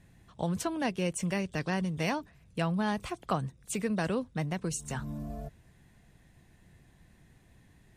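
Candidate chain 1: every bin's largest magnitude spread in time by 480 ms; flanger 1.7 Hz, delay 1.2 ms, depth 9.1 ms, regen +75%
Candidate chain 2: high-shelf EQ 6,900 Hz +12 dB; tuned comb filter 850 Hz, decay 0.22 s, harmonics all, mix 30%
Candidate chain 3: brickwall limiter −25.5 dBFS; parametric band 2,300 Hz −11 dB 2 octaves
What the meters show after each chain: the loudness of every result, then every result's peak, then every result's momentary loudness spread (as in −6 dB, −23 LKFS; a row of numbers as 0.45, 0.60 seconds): −29.0, −35.0, −37.5 LKFS; −12.5, −17.5, −26.0 dBFS; 9, 9, 6 LU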